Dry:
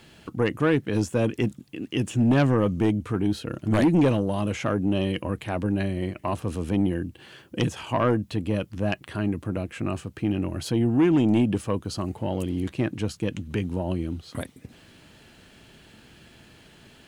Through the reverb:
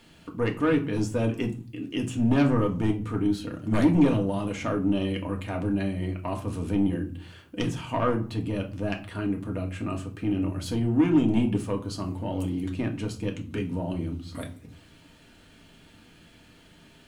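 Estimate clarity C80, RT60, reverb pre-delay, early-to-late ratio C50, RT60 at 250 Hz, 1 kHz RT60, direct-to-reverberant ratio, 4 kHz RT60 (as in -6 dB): 18.0 dB, 0.45 s, 3 ms, 13.0 dB, 0.65 s, 0.45 s, 1.5 dB, 0.30 s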